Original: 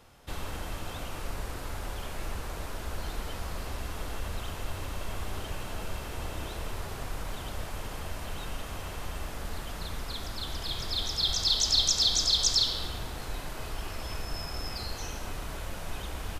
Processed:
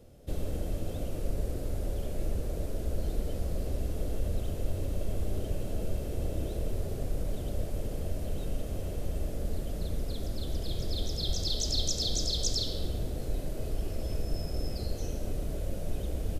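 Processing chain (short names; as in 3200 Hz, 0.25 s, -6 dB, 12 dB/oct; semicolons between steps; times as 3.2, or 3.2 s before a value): EQ curve 590 Hz 0 dB, 940 Hz -21 dB, 11000 Hz -8 dB; gain +5 dB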